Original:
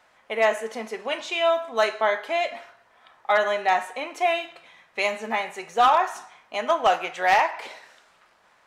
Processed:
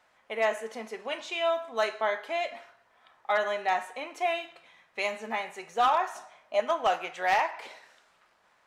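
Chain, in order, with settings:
0:06.15–0:06.60: parametric band 610 Hz +13.5 dB 0.27 octaves
level −6 dB

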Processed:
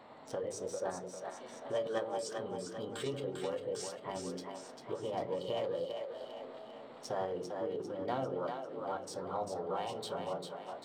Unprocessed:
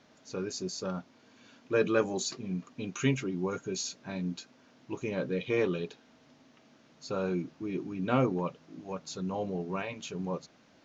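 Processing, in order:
adaptive Wiener filter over 9 samples
downward compressor 3 to 1, threshold −48 dBFS, peak gain reduction 19.5 dB
parametric band 780 Hz +9 dB 2.2 octaves
mains-hum notches 50/100/150/200/250/300/350/400/450 Hz
echo with a time of its own for lows and highs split 350 Hz, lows 104 ms, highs 397 ms, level −5 dB
convolution reverb, pre-delay 5 ms, DRR 10.5 dB
formants moved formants +4 semitones
thirty-one-band graphic EQ 200 Hz −4 dB, 500 Hz +4 dB, 1,600 Hz −7 dB, 2,500 Hz −5 dB, 4,000 Hz +5 dB
level +2.5 dB

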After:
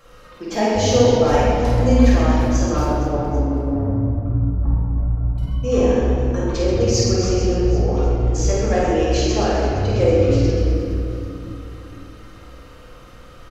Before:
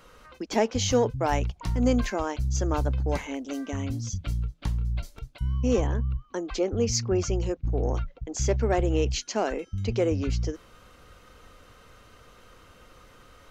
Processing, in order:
0:02.92–0:05.38: low-pass filter 1,100 Hz 24 dB per octave
reverse bouncing-ball delay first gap 50 ms, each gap 1.6×, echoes 5
convolution reverb RT60 2.7 s, pre-delay 4 ms, DRR −5 dB
level −1 dB

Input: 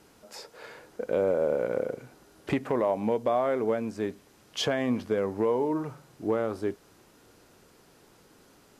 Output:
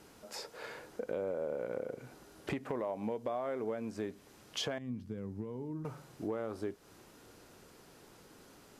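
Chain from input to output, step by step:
0:04.78–0:05.85: drawn EQ curve 160 Hz 0 dB, 640 Hz −22 dB, 5,300 Hz −14 dB
downward compressor 3 to 1, threshold −37 dBFS, peak gain reduction 11.5 dB

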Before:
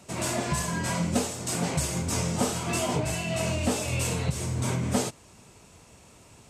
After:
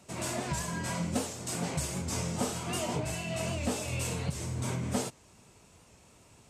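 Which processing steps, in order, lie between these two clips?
wow of a warped record 78 rpm, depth 100 cents
level −5.5 dB

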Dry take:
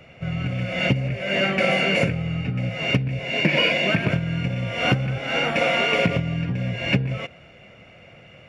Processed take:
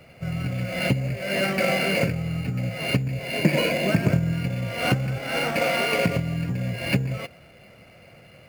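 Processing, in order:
0:03.38–0:04.33: tilt shelving filter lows +4 dB, about 880 Hz
in parallel at −3.5 dB: sample-rate reduction 7,000 Hz, jitter 0%
on the sum: level −6 dB

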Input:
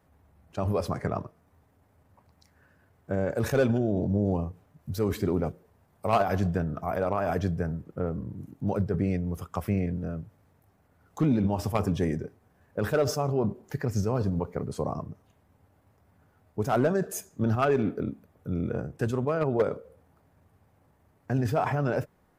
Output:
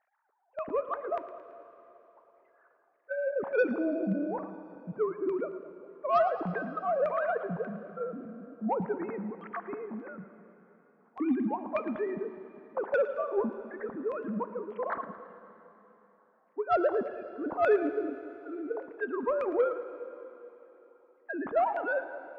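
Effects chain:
three sine waves on the formant tracks
auto-filter low-pass saw down 1.7 Hz 800–2,200 Hz
harmonic generator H 5 −26 dB, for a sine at −8 dBFS
echo with a time of its own for lows and highs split 690 Hz, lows 203 ms, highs 111 ms, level −15 dB
dense smooth reverb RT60 3.7 s, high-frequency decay 1×, DRR 12 dB
level −7 dB

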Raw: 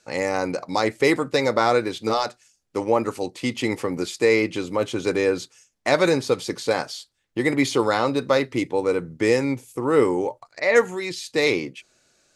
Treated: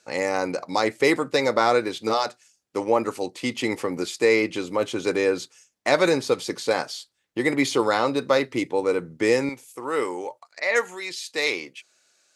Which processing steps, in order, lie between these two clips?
high-pass filter 200 Hz 6 dB per octave, from 0:09.49 1,000 Hz

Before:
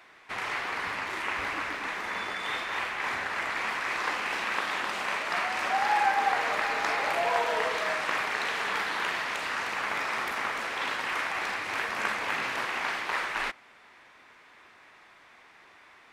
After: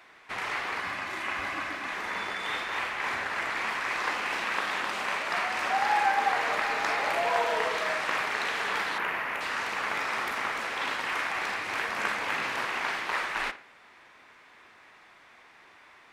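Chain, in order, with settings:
0:00.80–0:01.92: notch comb filter 460 Hz
0:08.98–0:09.41: flat-topped bell 5,500 Hz −11.5 dB
on a send: tape delay 60 ms, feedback 43%, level −12.5 dB, low-pass 3,400 Hz

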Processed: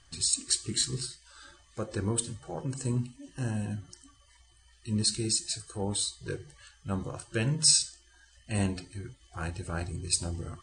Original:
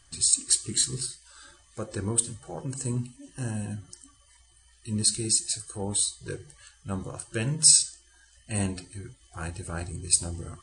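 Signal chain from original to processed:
low-pass filter 6,400 Hz 12 dB per octave

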